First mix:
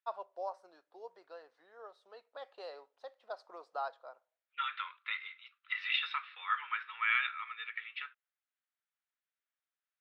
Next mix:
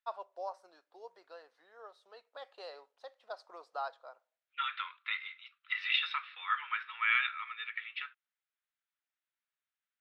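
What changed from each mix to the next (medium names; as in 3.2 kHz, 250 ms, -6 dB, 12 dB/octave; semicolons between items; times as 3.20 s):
master: add tilt EQ +1.5 dB/octave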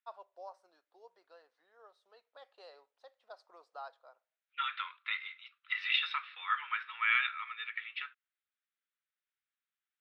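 first voice -7.5 dB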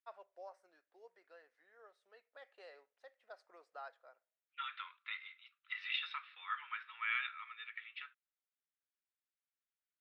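first voice: add graphic EQ 1/2/4 kHz -9/+10/-9 dB; second voice -8.0 dB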